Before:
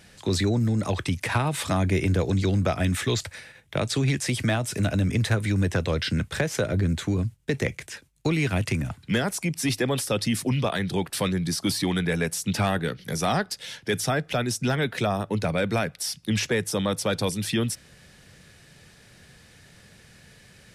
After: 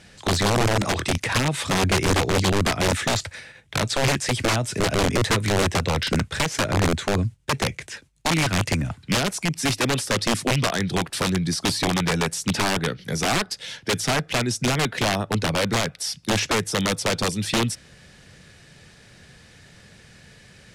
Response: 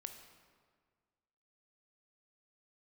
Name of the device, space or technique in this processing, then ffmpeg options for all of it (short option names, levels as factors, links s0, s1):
overflowing digital effects unit: -filter_complex "[0:a]asettb=1/sr,asplit=3[s0][s1][s2];[s0]atrim=end=0.584[s3];[s1]atrim=start=0.58:end=1.18,asetpts=PTS-STARTPTS,afade=t=in:d=0.004:c=qsin,afade=t=out:st=0.596:d=0.004:c=qsin,asplit=2[s4][s5];[s5]adelay=25,volume=0.631[s6];[s4][s6]amix=inputs=2:normalize=0,atrim=end_sample=26460[s7];[s2]atrim=start=1.176[s8];[s3][s7]acrossfade=d=0.004:c1=hsin:c2=qsin[s9];[s9][s8]acrossfade=d=0.004:c1=qsin:c2=hsin,aeval=exprs='(mod(7.5*val(0)+1,2)-1)/7.5':c=same,lowpass=9000,volume=1.41"